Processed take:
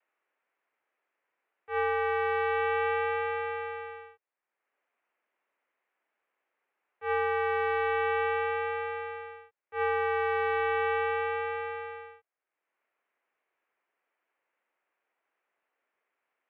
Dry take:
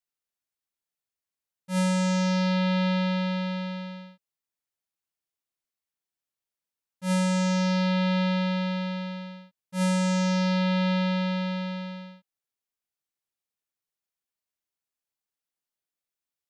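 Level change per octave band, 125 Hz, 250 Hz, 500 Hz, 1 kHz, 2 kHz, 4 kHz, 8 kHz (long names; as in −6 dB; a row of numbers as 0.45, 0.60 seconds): can't be measured, below −40 dB, +3.0 dB, +4.0 dB, +3.5 dB, −12.5 dB, below −40 dB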